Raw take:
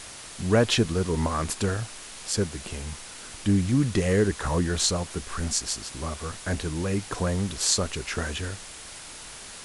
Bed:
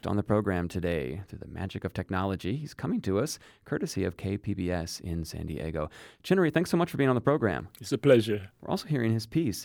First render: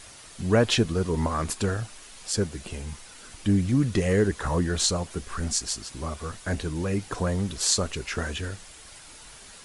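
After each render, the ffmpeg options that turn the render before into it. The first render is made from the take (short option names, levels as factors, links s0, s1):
-af "afftdn=nr=7:nf=-42"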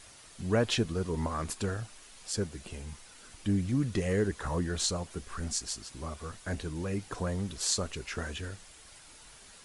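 -af "volume=0.473"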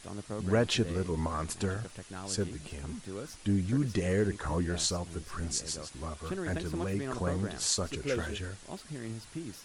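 -filter_complex "[1:a]volume=0.224[s0];[0:a][s0]amix=inputs=2:normalize=0"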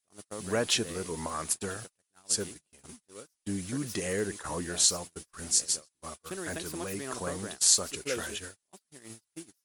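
-af "agate=range=0.0126:threshold=0.0141:ratio=16:detection=peak,aemphasis=mode=production:type=bsi"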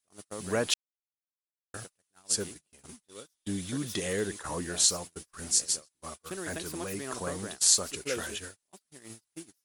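-filter_complex "[0:a]asettb=1/sr,asplit=3[s0][s1][s2];[s0]atrim=end=3.044[s3];[s1]atrim=start=3.04:end=4.33,asetpts=PTS-STARTPTS,afade=t=in:d=0.004:c=qsin,afade=t=out:st=1.286:d=0.004:c=qsin,equalizer=f=3500:w=6.2:g=11[s4];[s2]atrim=start=4.326[s5];[s3][s4]acrossfade=d=0.004:c1=hsin:c2=qsin[s6];[s6][s5]acrossfade=d=0.004:c1=qsin:c2=hsin,asplit=3[s7][s8][s9];[s7]atrim=end=0.74,asetpts=PTS-STARTPTS,afade=t=out:st=0.736:d=0.004:c=hsin[s10];[s8]atrim=start=0.74:end=1.74,asetpts=PTS-STARTPTS,volume=0[s11];[s9]atrim=start=1.74,asetpts=PTS-STARTPTS,afade=t=in:d=0.004:c=hsin[s12];[s10][s11][s12]concat=n=3:v=0:a=1"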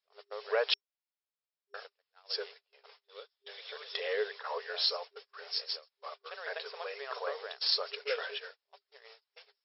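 -af "afftfilt=real='re*between(b*sr/4096,400,5500)':imag='im*between(b*sr/4096,400,5500)':win_size=4096:overlap=0.75"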